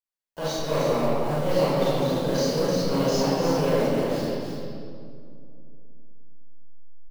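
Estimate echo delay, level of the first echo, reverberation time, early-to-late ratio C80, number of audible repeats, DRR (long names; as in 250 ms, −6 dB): 305 ms, −5.0 dB, 2.3 s, −3.0 dB, 1, −11.0 dB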